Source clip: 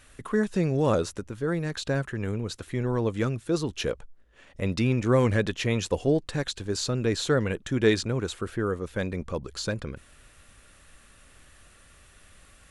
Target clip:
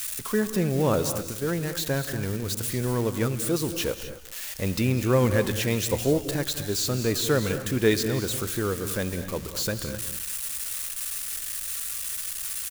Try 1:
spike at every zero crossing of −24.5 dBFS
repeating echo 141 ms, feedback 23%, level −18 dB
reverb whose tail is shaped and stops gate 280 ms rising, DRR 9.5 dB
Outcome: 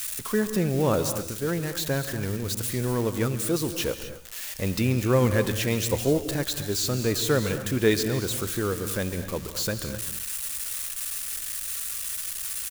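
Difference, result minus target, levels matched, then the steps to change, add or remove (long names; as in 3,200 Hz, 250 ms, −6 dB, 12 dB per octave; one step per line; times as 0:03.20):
echo 55 ms early
change: repeating echo 196 ms, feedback 23%, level −18 dB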